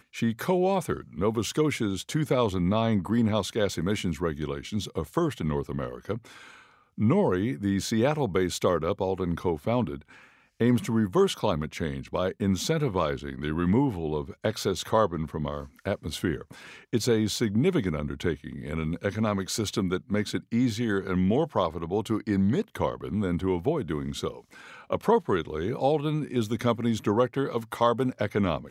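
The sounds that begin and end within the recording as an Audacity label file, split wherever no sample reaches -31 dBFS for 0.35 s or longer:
6.980000	9.960000	sound
10.610000	16.420000	sound
16.930000	24.310000	sound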